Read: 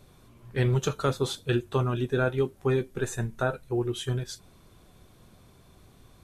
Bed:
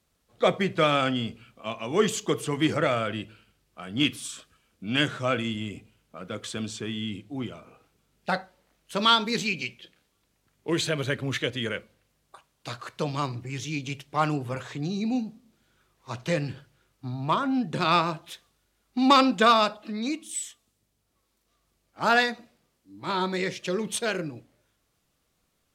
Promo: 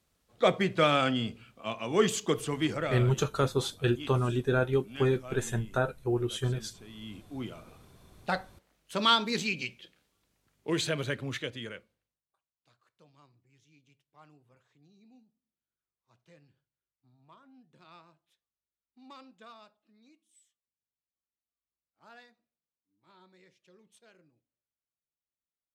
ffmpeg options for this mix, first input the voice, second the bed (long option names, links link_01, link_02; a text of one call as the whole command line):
ffmpeg -i stem1.wav -i stem2.wav -filter_complex "[0:a]adelay=2350,volume=-1dB[link_01];[1:a]volume=12.5dB,afade=type=out:start_time=2.3:duration=0.91:silence=0.158489,afade=type=in:start_time=6.88:duration=0.66:silence=0.188365,afade=type=out:start_time=10.91:duration=1.3:silence=0.0354813[link_02];[link_01][link_02]amix=inputs=2:normalize=0" out.wav